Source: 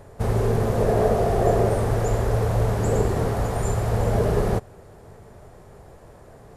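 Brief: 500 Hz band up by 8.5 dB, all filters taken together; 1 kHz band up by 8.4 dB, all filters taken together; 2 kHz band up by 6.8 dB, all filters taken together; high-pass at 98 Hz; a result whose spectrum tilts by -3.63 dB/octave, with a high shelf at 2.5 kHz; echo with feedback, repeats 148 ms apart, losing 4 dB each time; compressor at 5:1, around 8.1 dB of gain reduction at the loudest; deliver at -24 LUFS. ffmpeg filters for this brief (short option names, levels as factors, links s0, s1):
-af "highpass=98,equalizer=f=500:t=o:g=8.5,equalizer=f=1000:t=o:g=7,equalizer=f=2000:t=o:g=7,highshelf=f=2500:g=-4,acompressor=threshold=0.141:ratio=5,aecho=1:1:148|296|444|592|740|888|1036|1184|1332:0.631|0.398|0.25|0.158|0.0994|0.0626|0.0394|0.0249|0.0157,volume=0.596"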